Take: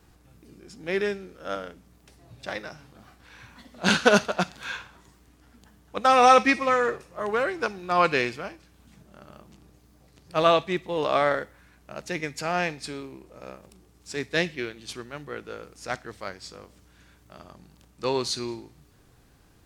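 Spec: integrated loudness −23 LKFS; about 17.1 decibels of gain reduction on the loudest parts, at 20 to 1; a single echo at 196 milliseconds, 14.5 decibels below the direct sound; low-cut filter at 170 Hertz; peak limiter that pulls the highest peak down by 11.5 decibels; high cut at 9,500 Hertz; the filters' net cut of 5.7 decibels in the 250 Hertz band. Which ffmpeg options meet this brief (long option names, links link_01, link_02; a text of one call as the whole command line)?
ffmpeg -i in.wav -af "highpass=170,lowpass=9500,equalizer=frequency=250:width_type=o:gain=-6.5,acompressor=threshold=-28dB:ratio=20,alimiter=level_in=2dB:limit=-24dB:level=0:latency=1,volume=-2dB,aecho=1:1:196:0.188,volume=16.5dB" out.wav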